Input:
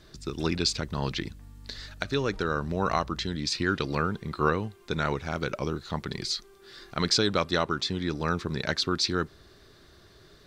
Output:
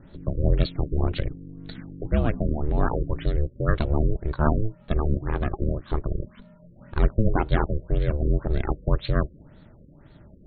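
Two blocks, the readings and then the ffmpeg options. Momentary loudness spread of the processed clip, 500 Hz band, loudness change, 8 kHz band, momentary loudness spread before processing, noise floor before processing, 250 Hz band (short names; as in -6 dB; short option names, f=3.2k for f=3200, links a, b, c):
10 LU, +1.0 dB, +2.5 dB, under -40 dB, 11 LU, -55 dBFS, +2.0 dB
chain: -af "aeval=exprs='val(0)*sin(2*PI*220*n/s)':c=same,aemphasis=mode=reproduction:type=bsi,afftfilt=real='re*lt(b*sr/1024,550*pow(4500/550,0.5+0.5*sin(2*PI*1.9*pts/sr)))':imag='im*lt(b*sr/1024,550*pow(4500/550,0.5+0.5*sin(2*PI*1.9*pts/sr)))':win_size=1024:overlap=0.75,volume=2.5dB"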